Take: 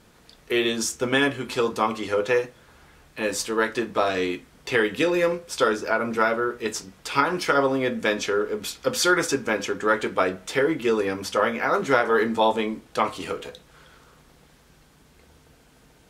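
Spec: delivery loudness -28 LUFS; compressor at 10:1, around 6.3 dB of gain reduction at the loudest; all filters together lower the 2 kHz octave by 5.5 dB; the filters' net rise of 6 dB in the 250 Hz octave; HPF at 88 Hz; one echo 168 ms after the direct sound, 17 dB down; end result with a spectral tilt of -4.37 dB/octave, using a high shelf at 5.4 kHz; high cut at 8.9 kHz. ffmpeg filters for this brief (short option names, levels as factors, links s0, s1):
-af "highpass=88,lowpass=8900,equalizer=f=250:t=o:g=8,equalizer=f=2000:t=o:g=-7,highshelf=f=5400:g=-8,acompressor=threshold=0.1:ratio=10,aecho=1:1:168:0.141,volume=0.841"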